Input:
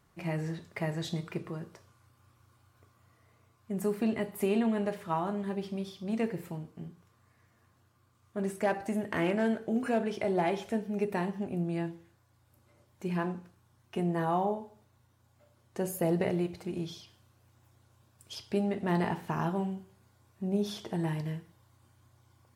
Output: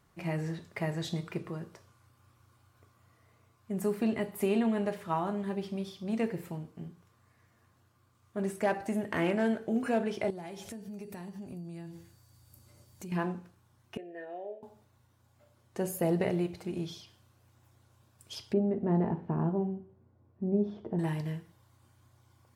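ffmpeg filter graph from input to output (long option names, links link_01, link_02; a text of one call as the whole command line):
ffmpeg -i in.wav -filter_complex "[0:a]asettb=1/sr,asplit=3[link_01][link_02][link_03];[link_01]atrim=end=10.304[link_04];[link_02]atrim=start=10.3:end=13.12,asetpts=PTS-STARTPTS,afade=type=in:duration=0.004:curve=qsin,afade=type=out:start_time=2.816:duration=0.004:curve=qsin,bass=frequency=250:gain=7,treble=frequency=4000:gain=12,acompressor=threshold=-41dB:ratio=5:attack=3.2:release=140:knee=1:detection=peak,aeval=exprs='val(0)+0.0002*sin(2*PI*4600*n/s)':channel_layout=same[link_05];[link_03]atrim=start=13.116[link_06];[link_04][link_05]acrossfade=duration=0.004:curve1=hsin:curve2=qsin[link_07];[link_07][link_06]acrossfade=duration=0.004:curve1=qsin:curve2=hsin,asettb=1/sr,asplit=3[link_08][link_09][link_10];[link_08]atrim=end=13.974[link_11];[link_09]atrim=start=13.97:end=14.63,asetpts=PTS-STARTPTS,afade=type=in:duration=0.004:curve=qsin,afade=type=out:start_time=0.656:duration=0.004:curve=qsin,asplit=3[link_12][link_13][link_14];[link_12]bandpass=frequency=530:width_type=q:width=8,volume=0dB[link_15];[link_13]bandpass=frequency=1840:width_type=q:width=8,volume=-6dB[link_16];[link_14]bandpass=frequency=2480:width_type=q:width=8,volume=-9dB[link_17];[link_15][link_16][link_17]amix=inputs=3:normalize=0,aecho=1:1:2.9:0.54,atrim=end_sample=29106[link_18];[link_10]atrim=start=14.626[link_19];[link_11][link_18]acrossfade=duration=0.004:curve1=hsin:curve2=qsin[link_20];[link_20][link_19]acrossfade=duration=0.004:curve1=qsin:curve2=hsin,asettb=1/sr,asplit=3[link_21][link_22][link_23];[link_21]atrim=end=18.534[link_24];[link_22]atrim=start=18.53:end=20.99,asetpts=PTS-STARTPTS,afade=type=in:duration=0.004:curve=qsin,afade=type=out:start_time=2.456:duration=0.004:curve=qsin,bandpass=frequency=360:width_type=q:width=0.84,aemphasis=mode=reproduction:type=bsi,asplit=2[link_25][link_26];[link_26]adelay=13,volume=-12.5dB[link_27];[link_25][link_27]amix=inputs=2:normalize=0,atrim=end_sample=108486[link_28];[link_23]atrim=start=20.986[link_29];[link_24][link_28]acrossfade=duration=0.004:curve1=hsin:curve2=qsin[link_30];[link_30][link_29]acrossfade=duration=0.004:curve1=qsin:curve2=hsin" out.wav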